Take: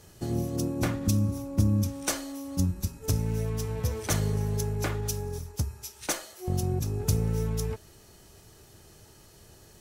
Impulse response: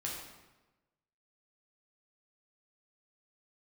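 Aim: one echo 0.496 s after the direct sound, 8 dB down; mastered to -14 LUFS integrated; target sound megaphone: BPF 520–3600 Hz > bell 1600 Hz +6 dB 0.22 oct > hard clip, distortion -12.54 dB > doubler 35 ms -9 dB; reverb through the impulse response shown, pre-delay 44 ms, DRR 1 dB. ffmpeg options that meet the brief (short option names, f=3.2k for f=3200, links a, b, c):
-filter_complex "[0:a]aecho=1:1:496:0.398,asplit=2[a][b];[1:a]atrim=start_sample=2205,adelay=44[c];[b][c]afir=irnorm=-1:irlink=0,volume=-2.5dB[d];[a][d]amix=inputs=2:normalize=0,highpass=520,lowpass=3.6k,equalizer=f=1.6k:t=o:w=0.22:g=6,asoftclip=type=hard:threshold=-31.5dB,asplit=2[e][f];[f]adelay=35,volume=-9dB[g];[e][g]amix=inputs=2:normalize=0,volume=24.5dB"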